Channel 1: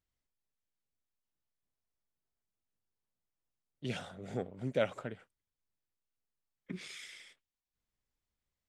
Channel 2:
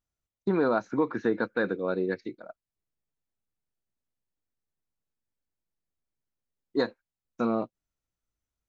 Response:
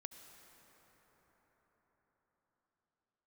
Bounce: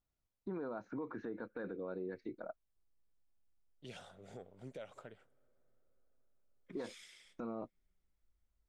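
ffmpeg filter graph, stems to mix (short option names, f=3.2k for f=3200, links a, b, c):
-filter_complex "[0:a]equalizer=f=125:t=o:w=1:g=-6,equalizer=f=250:t=o:w=1:g=-6,equalizer=f=2k:t=o:w=1:g=-4,alimiter=level_in=8.5dB:limit=-24dB:level=0:latency=1:release=175,volume=-8.5dB,volume=-7dB,asplit=2[a][b];[b]volume=-15dB[c];[1:a]asubboost=boost=4.5:cutoff=59,lowpass=f=1.2k:p=1,acompressor=threshold=-34dB:ratio=6,volume=1dB[d];[2:a]atrim=start_sample=2205[e];[c][e]afir=irnorm=-1:irlink=0[f];[a][d][f]amix=inputs=3:normalize=0,alimiter=level_in=9.5dB:limit=-24dB:level=0:latency=1:release=35,volume=-9.5dB"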